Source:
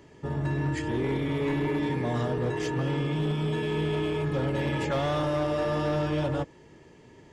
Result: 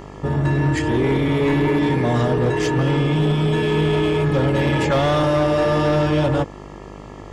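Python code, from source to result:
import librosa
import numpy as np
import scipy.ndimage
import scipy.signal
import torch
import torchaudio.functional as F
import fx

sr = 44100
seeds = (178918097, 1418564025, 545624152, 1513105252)

p1 = 10.0 ** (-35.5 / 20.0) * np.tanh(x / 10.0 ** (-35.5 / 20.0))
p2 = x + (p1 * librosa.db_to_amplitude(-6.5))
p3 = fx.dmg_buzz(p2, sr, base_hz=50.0, harmonics=27, level_db=-47.0, tilt_db=-3, odd_only=False)
y = p3 * librosa.db_to_amplitude(8.5)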